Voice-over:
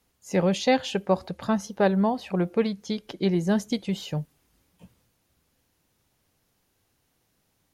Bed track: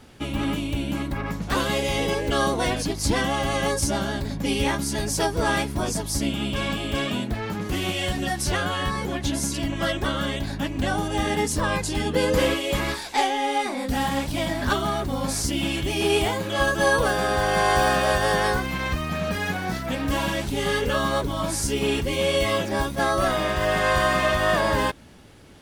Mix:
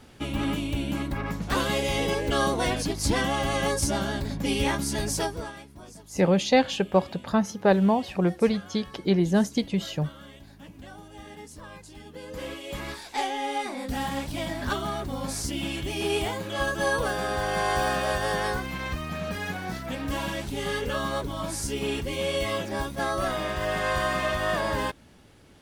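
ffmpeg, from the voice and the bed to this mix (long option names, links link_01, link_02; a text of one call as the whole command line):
ffmpeg -i stem1.wav -i stem2.wav -filter_complex "[0:a]adelay=5850,volume=1.5dB[link_01];[1:a]volume=12.5dB,afade=type=out:start_time=5.1:duration=0.42:silence=0.125893,afade=type=in:start_time=12.24:duration=1.13:silence=0.188365[link_02];[link_01][link_02]amix=inputs=2:normalize=0" out.wav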